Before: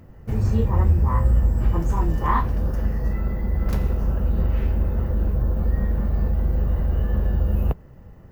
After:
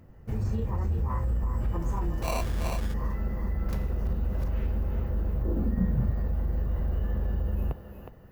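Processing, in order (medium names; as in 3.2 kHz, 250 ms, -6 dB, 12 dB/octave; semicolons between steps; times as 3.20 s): thinning echo 365 ms, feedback 40%, high-pass 300 Hz, level -7 dB; 2.22–2.94 s: sample-rate reducer 1.7 kHz, jitter 0%; 4.05–4.48 s: reverse; peak limiter -14.5 dBFS, peak gain reduction 6.5 dB; 5.44–6.10 s: peaking EQ 380 Hz -> 110 Hz +15 dB 0.68 oct; trim -6.5 dB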